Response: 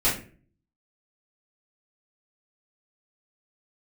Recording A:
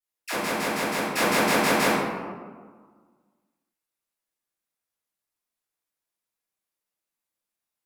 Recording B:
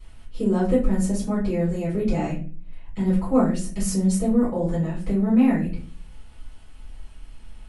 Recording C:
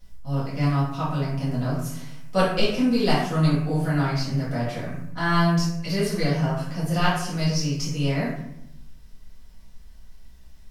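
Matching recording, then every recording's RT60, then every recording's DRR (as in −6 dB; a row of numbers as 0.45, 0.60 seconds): B; 1.6, 0.40, 0.80 seconds; −17.0, −11.5, −9.5 decibels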